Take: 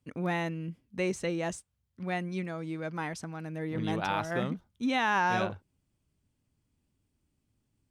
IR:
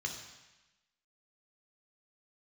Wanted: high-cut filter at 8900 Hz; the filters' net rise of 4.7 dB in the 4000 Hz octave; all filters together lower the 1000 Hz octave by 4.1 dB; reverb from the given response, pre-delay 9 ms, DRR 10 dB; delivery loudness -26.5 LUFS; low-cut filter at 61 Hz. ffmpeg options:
-filter_complex "[0:a]highpass=61,lowpass=8.9k,equalizer=f=1k:t=o:g=-5.5,equalizer=f=4k:t=o:g=6.5,asplit=2[a][b];[1:a]atrim=start_sample=2205,adelay=9[c];[b][c]afir=irnorm=-1:irlink=0,volume=-11.5dB[d];[a][d]amix=inputs=2:normalize=0,volume=6.5dB"

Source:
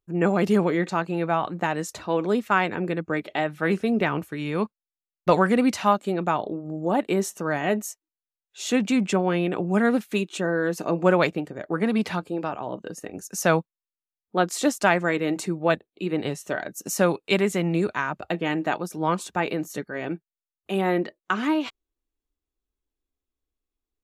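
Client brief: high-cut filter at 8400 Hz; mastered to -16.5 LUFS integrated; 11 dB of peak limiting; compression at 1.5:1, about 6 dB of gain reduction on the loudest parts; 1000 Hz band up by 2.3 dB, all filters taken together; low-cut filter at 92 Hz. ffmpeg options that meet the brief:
-af "highpass=92,lowpass=8.4k,equalizer=f=1k:t=o:g=3,acompressor=threshold=-29dB:ratio=1.5,volume=14.5dB,alimiter=limit=-5dB:level=0:latency=1"

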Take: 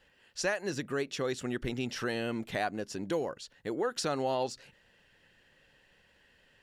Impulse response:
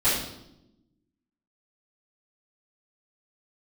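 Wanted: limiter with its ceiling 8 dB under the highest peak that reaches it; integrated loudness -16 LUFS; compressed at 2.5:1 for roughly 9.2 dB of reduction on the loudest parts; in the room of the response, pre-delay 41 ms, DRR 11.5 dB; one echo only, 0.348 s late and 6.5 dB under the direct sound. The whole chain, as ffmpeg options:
-filter_complex "[0:a]acompressor=threshold=-41dB:ratio=2.5,alimiter=level_in=11dB:limit=-24dB:level=0:latency=1,volume=-11dB,aecho=1:1:348:0.473,asplit=2[a][b];[1:a]atrim=start_sample=2205,adelay=41[c];[b][c]afir=irnorm=-1:irlink=0,volume=-26dB[d];[a][d]amix=inputs=2:normalize=0,volume=28dB"

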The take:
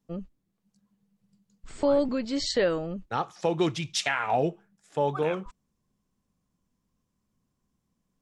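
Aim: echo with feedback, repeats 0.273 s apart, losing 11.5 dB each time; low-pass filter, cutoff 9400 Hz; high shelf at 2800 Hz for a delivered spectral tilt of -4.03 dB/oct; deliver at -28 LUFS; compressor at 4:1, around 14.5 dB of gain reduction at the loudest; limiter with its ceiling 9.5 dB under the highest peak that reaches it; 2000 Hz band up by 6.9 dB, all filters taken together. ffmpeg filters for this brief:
-af "lowpass=9.4k,equalizer=f=2k:t=o:g=6.5,highshelf=f=2.8k:g=5.5,acompressor=threshold=-36dB:ratio=4,alimiter=level_in=5.5dB:limit=-24dB:level=0:latency=1,volume=-5.5dB,aecho=1:1:273|546|819:0.266|0.0718|0.0194,volume=12.5dB"

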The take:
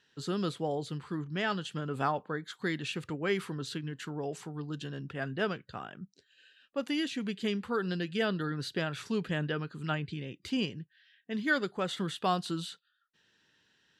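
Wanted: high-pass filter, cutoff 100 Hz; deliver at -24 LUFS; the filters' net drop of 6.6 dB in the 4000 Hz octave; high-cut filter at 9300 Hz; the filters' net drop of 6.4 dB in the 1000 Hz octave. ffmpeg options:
-af "highpass=100,lowpass=9.3k,equalizer=f=1k:t=o:g=-9,equalizer=f=4k:t=o:g=-8.5,volume=12.5dB"

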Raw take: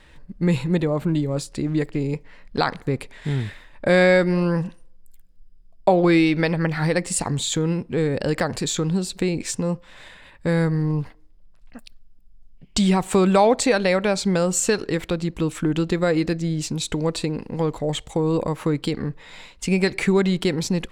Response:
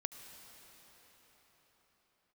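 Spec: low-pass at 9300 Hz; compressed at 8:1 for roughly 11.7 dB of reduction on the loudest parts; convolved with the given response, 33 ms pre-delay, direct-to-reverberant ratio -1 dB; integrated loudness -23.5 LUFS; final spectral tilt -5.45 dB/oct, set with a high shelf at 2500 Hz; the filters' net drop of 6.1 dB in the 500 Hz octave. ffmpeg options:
-filter_complex "[0:a]lowpass=9.3k,equalizer=f=500:t=o:g=-7.5,highshelf=f=2.5k:g=-6,acompressor=threshold=-28dB:ratio=8,asplit=2[a][b];[1:a]atrim=start_sample=2205,adelay=33[c];[b][c]afir=irnorm=-1:irlink=0,volume=2.5dB[d];[a][d]amix=inputs=2:normalize=0,volume=6.5dB"

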